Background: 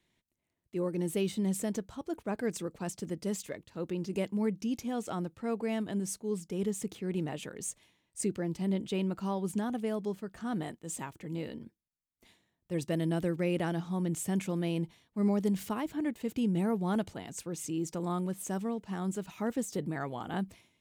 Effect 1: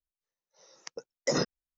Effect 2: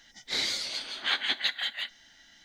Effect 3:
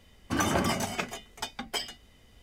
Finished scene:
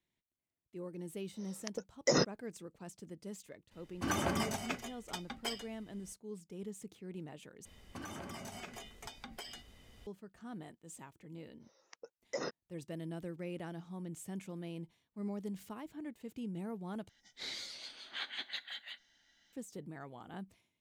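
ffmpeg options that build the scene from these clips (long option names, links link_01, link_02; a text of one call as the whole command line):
ffmpeg -i bed.wav -i cue0.wav -i cue1.wav -i cue2.wav -filter_complex "[1:a]asplit=2[link_01][link_02];[3:a]asplit=2[link_03][link_04];[0:a]volume=-12dB[link_05];[link_04]acompressor=threshold=-42dB:ratio=6:attack=3.2:release=140:knee=1:detection=peak[link_06];[link_02]bass=frequency=250:gain=-12,treble=frequency=4000:gain=-7[link_07];[link_05]asplit=3[link_08][link_09][link_10];[link_08]atrim=end=7.654[link_11];[link_06]atrim=end=2.42,asetpts=PTS-STARTPTS,volume=-1.5dB[link_12];[link_09]atrim=start=10.066:end=17.094[link_13];[2:a]atrim=end=2.44,asetpts=PTS-STARTPTS,volume=-13.5dB[link_14];[link_10]atrim=start=19.526[link_15];[link_01]atrim=end=1.77,asetpts=PTS-STARTPTS,volume=-1dB,afade=type=in:duration=0.004:curve=hsin,afade=type=out:start_time=1.766:duration=0.004:curve=hsin,adelay=800[link_16];[link_03]atrim=end=2.42,asetpts=PTS-STARTPTS,volume=-7dB,afade=type=in:duration=0.004:curve=hsin,afade=type=out:start_time=2.416:duration=0.004:curve=hsin,adelay=3710[link_17];[link_07]atrim=end=1.77,asetpts=PTS-STARTPTS,volume=-9dB,afade=type=in:duration=0.004:curve=hsin,afade=type=out:start_time=1.766:duration=0.004:curve=hsin,adelay=487746S[link_18];[link_11][link_12]acrossfade=duration=0.004:curve1=hsin:curve2=hsin[link_19];[link_19][link_13]acrossfade=duration=0.004:curve1=hsin:curve2=hsin[link_20];[link_20][link_14]acrossfade=duration=0.004:curve1=hsin:curve2=hsin[link_21];[link_21][link_15]acrossfade=duration=0.004:curve1=hsin:curve2=hsin[link_22];[link_22][link_16][link_17][link_18]amix=inputs=4:normalize=0" out.wav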